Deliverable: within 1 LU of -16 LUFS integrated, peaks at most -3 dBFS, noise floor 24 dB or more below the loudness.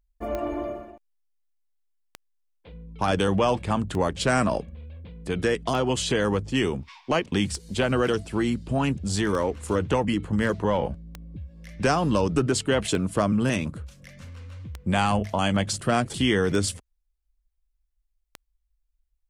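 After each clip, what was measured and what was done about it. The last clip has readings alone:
clicks found 11; loudness -25.5 LUFS; peak level -10.5 dBFS; loudness target -16.0 LUFS
-> de-click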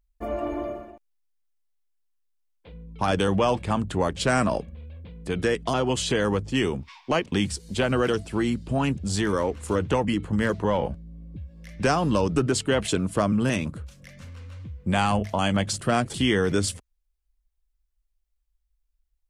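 clicks found 0; loudness -25.5 LUFS; peak level -10.5 dBFS; loudness target -16.0 LUFS
-> trim +9.5 dB; peak limiter -3 dBFS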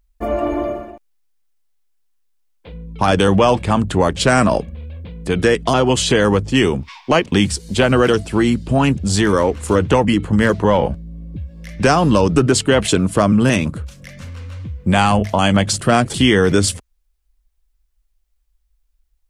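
loudness -16.0 LUFS; peak level -3.0 dBFS; noise floor -65 dBFS

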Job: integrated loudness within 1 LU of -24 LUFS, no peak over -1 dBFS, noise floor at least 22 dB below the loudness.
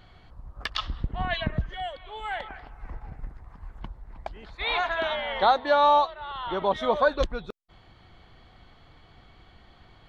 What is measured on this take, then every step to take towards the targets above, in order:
loudness -26.5 LUFS; peak level -9.5 dBFS; loudness target -24.0 LUFS
-> trim +2.5 dB

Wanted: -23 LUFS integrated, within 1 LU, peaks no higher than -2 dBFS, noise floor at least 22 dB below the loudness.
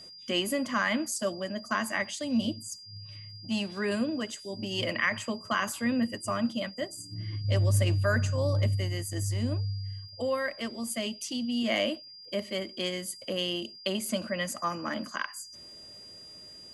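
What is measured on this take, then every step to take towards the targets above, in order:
tick rate 18 per s; steady tone 4.8 kHz; tone level -46 dBFS; loudness -31.0 LUFS; peak level -13.5 dBFS; loudness target -23.0 LUFS
-> de-click; band-stop 4.8 kHz, Q 30; trim +8 dB

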